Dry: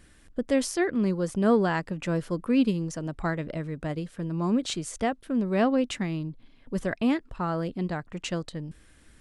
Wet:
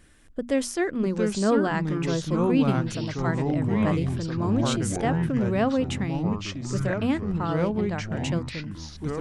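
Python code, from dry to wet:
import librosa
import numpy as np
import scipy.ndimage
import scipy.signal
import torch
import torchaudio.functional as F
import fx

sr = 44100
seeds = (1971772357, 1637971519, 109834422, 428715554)

y = fx.peak_eq(x, sr, hz=4500.0, db=-3.0, octaves=0.24)
y = fx.hum_notches(y, sr, base_hz=60, count=4)
y = fx.echo_pitch(y, sr, ms=546, semitones=-4, count=3, db_per_echo=-3.0)
y = fx.sustainer(y, sr, db_per_s=22.0, at=(3.42, 5.53))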